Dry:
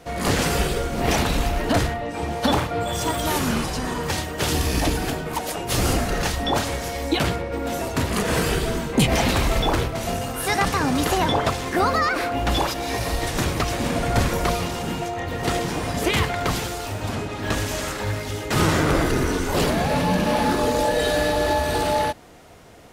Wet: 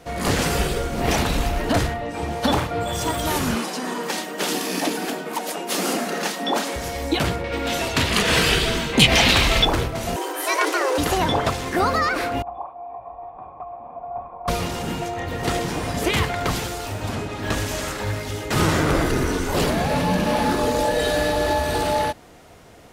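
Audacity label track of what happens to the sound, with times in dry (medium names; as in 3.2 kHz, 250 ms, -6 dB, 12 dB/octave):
3.550000	6.760000	brick-wall FIR high-pass 170 Hz
7.440000	9.650000	peaking EQ 3.2 kHz +11.5 dB 1.9 oct
10.160000	10.980000	frequency shift +260 Hz
12.420000	14.480000	cascade formant filter a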